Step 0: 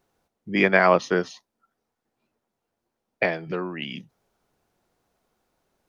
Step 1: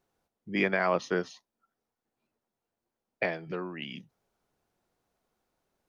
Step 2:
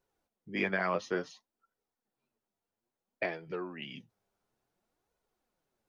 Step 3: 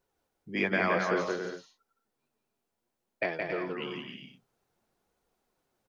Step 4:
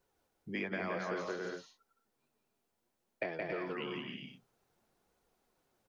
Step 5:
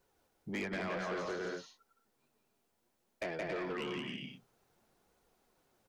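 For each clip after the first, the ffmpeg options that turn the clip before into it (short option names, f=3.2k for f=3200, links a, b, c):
-af "alimiter=limit=-8dB:level=0:latency=1:release=60,volume=-6.5dB"
-af "flanger=delay=2:depth=8.3:regen=40:speed=0.58:shape=sinusoidal"
-af "aecho=1:1:170|272|333.2|369.9|392:0.631|0.398|0.251|0.158|0.1,volume=2.5dB"
-filter_complex "[0:a]acrossover=split=660|3000[a][b][c];[a]acompressor=threshold=-40dB:ratio=4[d];[b]acompressor=threshold=-43dB:ratio=4[e];[c]acompressor=threshold=-57dB:ratio=4[f];[d][e][f]amix=inputs=3:normalize=0,volume=1dB"
-af "asoftclip=type=tanh:threshold=-36.5dB,volume=3.5dB"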